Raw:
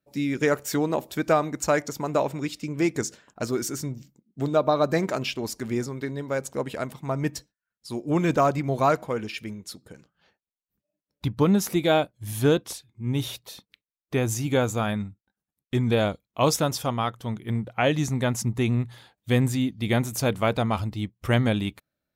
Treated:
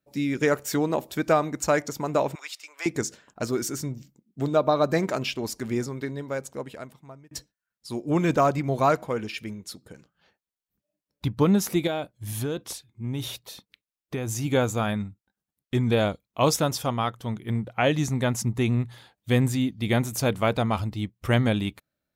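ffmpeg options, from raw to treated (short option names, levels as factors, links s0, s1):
-filter_complex "[0:a]asettb=1/sr,asplit=3[s0][s1][s2];[s0]atrim=end=2.354[s3];[s1]atrim=start=2.35:end=2.86,asetpts=PTS-STARTPTS,afade=t=in:d=0.004:c=qsin,afade=t=out:st=0.506:d=0.004:c=qsin,highpass=f=800:w=0.5412,highpass=f=800:w=1.3066[s4];[s2]atrim=start=2.856[s5];[s3][s4]acrossfade=d=0.004:c1=hsin:c2=qsin[s6];[s6][s5]acrossfade=d=0.004:c1=qsin:c2=hsin,asettb=1/sr,asplit=3[s7][s8][s9];[s7]atrim=end=11.874[s10];[s8]atrim=start=11.87:end=14.42,asetpts=PTS-STARTPTS,afade=t=in:d=0.004:c=qsin,afade=t=out:st=2.546:d=0.004:c=qsin,acompressor=threshold=0.0562:ratio=5:attack=3.2:release=140:knee=1:detection=peak[s11];[s9]atrim=start=14.416[s12];[s10][s11]acrossfade=d=0.004:c1=hsin:c2=qsin[s13];[s13][s12]acrossfade=d=0.004:c1=qsin:c2=hsin,asplit=2[s14][s15];[s14]atrim=end=7.31,asetpts=PTS-STARTPTS,afade=t=out:st=5.96:d=1.35[s16];[s15]atrim=start=7.31,asetpts=PTS-STARTPTS,afade=t=in:d=0.004:c=hsin[s17];[s16][s17]concat=n=2:v=0:a=1"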